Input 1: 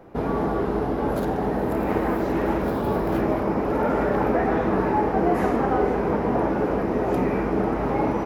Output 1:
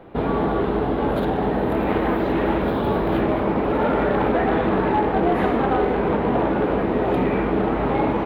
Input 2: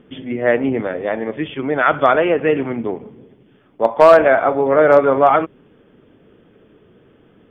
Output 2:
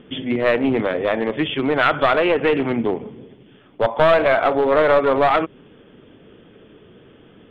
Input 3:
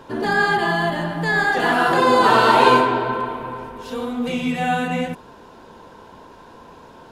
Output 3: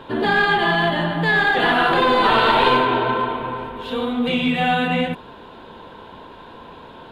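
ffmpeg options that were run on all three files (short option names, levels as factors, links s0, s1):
-af "acompressor=threshold=0.126:ratio=2,aeval=exprs='clip(val(0),-1,0.141)':c=same,highshelf=f=4500:t=q:w=3:g=-8,volume=1.41"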